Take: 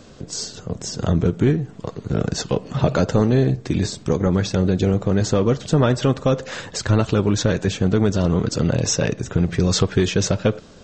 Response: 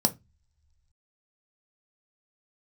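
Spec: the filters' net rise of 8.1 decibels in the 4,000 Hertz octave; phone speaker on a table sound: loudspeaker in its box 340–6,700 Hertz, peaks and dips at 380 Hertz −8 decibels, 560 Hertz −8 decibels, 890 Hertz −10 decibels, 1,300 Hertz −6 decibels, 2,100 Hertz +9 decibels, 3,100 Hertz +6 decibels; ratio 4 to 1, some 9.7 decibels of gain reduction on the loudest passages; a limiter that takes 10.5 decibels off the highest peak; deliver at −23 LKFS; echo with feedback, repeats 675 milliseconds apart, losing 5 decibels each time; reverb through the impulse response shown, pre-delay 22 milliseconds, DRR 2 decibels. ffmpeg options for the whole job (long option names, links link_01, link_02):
-filter_complex "[0:a]equalizer=frequency=4000:width_type=o:gain=7.5,acompressor=threshold=-24dB:ratio=4,alimiter=limit=-20dB:level=0:latency=1,aecho=1:1:675|1350|2025|2700|3375|4050|4725:0.562|0.315|0.176|0.0988|0.0553|0.031|0.0173,asplit=2[link_01][link_02];[1:a]atrim=start_sample=2205,adelay=22[link_03];[link_02][link_03]afir=irnorm=-1:irlink=0,volume=-11.5dB[link_04];[link_01][link_04]amix=inputs=2:normalize=0,highpass=frequency=340:width=0.5412,highpass=frequency=340:width=1.3066,equalizer=frequency=380:width_type=q:width=4:gain=-8,equalizer=frequency=560:width_type=q:width=4:gain=-8,equalizer=frequency=890:width_type=q:width=4:gain=-10,equalizer=frequency=1300:width_type=q:width=4:gain=-6,equalizer=frequency=2100:width_type=q:width=4:gain=9,equalizer=frequency=3100:width_type=q:width=4:gain=6,lowpass=frequency=6700:width=0.5412,lowpass=frequency=6700:width=1.3066,volume=6.5dB"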